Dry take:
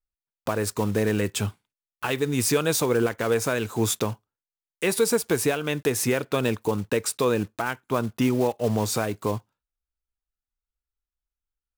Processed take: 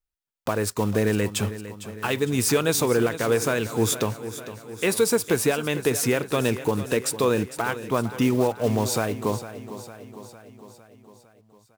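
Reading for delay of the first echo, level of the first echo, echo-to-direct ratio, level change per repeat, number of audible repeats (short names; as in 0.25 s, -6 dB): 0.455 s, -13.5 dB, -11.5 dB, -4.5 dB, 5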